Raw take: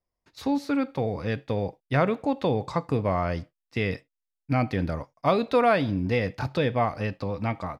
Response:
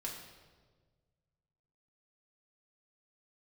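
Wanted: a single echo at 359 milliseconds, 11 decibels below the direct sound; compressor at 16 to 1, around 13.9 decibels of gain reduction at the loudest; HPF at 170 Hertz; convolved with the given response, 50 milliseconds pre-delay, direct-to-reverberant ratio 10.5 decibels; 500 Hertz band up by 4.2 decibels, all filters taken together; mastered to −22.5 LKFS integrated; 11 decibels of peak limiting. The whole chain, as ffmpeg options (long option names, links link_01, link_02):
-filter_complex "[0:a]highpass=170,equalizer=frequency=500:width_type=o:gain=5,acompressor=threshold=-27dB:ratio=16,alimiter=level_in=0.5dB:limit=-24dB:level=0:latency=1,volume=-0.5dB,aecho=1:1:359:0.282,asplit=2[link_01][link_02];[1:a]atrim=start_sample=2205,adelay=50[link_03];[link_02][link_03]afir=irnorm=-1:irlink=0,volume=-10dB[link_04];[link_01][link_04]amix=inputs=2:normalize=0,volume=13dB"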